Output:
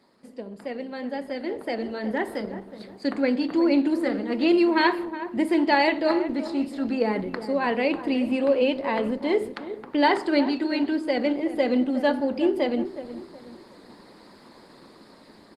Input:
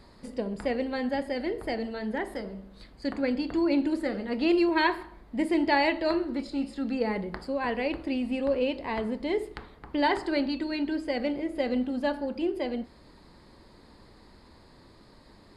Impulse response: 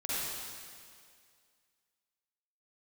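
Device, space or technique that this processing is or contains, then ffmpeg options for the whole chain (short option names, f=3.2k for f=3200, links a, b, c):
video call: -filter_complex "[0:a]highpass=f=180:w=0.5412,highpass=f=180:w=1.3066,asplit=2[a][b];[b]adelay=366,lowpass=f=1.2k:p=1,volume=-11dB,asplit=2[c][d];[d]adelay=366,lowpass=f=1.2k:p=1,volume=0.37,asplit=2[e][f];[f]adelay=366,lowpass=f=1.2k:p=1,volume=0.37,asplit=2[g][h];[h]adelay=366,lowpass=f=1.2k:p=1,volume=0.37[i];[a][c][e][g][i]amix=inputs=5:normalize=0,dynaudnorm=f=410:g=9:m=13.5dB,volume=-5dB" -ar 48000 -c:a libopus -b:a 20k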